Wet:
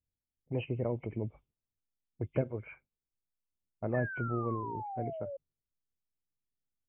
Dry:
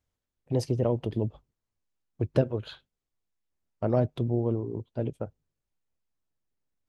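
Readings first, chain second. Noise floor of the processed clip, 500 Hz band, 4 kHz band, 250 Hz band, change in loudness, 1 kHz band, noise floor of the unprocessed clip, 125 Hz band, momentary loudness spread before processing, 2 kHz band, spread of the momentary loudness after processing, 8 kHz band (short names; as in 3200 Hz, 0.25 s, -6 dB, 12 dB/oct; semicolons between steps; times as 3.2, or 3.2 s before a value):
under -85 dBFS, -7.0 dB, under -10 dB, -7.5 dB, -7.0 dB, +1.0 dB, under -85 dBFS, -7.5 dB, 9 LU, +8.0 dB, 10 LU, n/a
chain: nonlinear frequency compression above 2000 Hz 4:1; low-pass opened by the level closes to 350 Hz, open at -26.5 dBFS; painted sound fall, 3.94–5.37, 540–1800 Hz -33 dBFS; gain -7.5 dB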